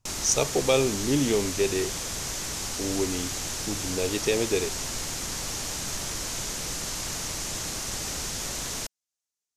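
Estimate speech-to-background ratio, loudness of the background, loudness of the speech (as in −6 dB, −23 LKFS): 3.5 dB, −30.5 LKFS, −27.0 LKFS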